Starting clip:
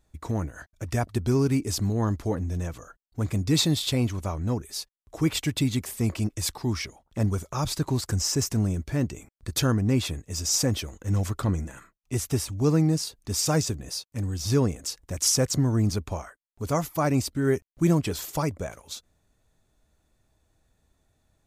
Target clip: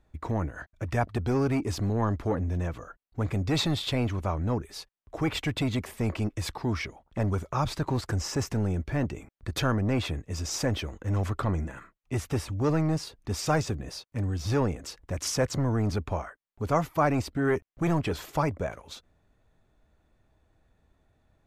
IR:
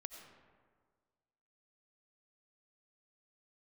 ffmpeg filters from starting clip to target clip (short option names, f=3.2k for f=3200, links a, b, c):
-filter_complex "[0:a]bass=f=250:g=-1,treble=f=4k:g=-15,acrossover=split=600|5500[a][b][c];[a]asoftclip=type=tanh:threshold=-26.5dB[d];[d][b][c]amix=inputs=3:normalize=0,volume=3dB"